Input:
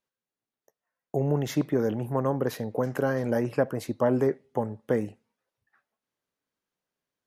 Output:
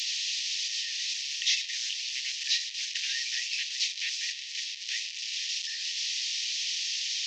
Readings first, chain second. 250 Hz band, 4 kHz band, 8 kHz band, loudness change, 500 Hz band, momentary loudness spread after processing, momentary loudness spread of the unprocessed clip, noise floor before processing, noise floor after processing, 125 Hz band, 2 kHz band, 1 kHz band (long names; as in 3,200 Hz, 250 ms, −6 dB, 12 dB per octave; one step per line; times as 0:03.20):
below −40 dB, +23.5 dB, +18.0 dB, −1.5 dB, below −40 dB, 4 LU, 6 LU, below −85 dBFS, −40 dBFS, below −40 dB, +6.5 dB, below −40 dB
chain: linear delta modulator 32 kbit/s, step −40 dBFS
Chebyshev high-pass with heavy ripple 1,800 Hz, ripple 3 dB
high shelf with overshoot 2,400 Hz +10 dB, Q 1.5
level +9 dB